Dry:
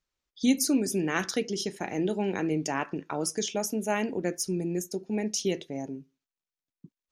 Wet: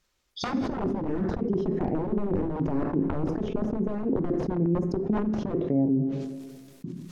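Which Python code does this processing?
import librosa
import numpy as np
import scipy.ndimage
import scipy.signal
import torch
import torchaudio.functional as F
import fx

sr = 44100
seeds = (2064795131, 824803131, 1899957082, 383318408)

y = (np.mod(10.0 ** (23.0 / 20.0) * x + 1.0, 2.0) - 1.0) / 10.0 ** (23.0 / 20.0)
y = fx.over_compress(y, sr, threshold_db=-32.0, ratio=-0.5)
y = fx.env_lowpass_down(y, sr, base_hz=420.0, full_db=-31.5)
y = fx.rev_double_slope(y, sr, seeds[0], early_s=0.73, late_s=2.5, knee_db=-24, drr_db=11.0)
y = fx.sustainer(y, sr, db_per_s=37.0)
y = F.gain(torch.from_numpy(y), 9.0).numpy()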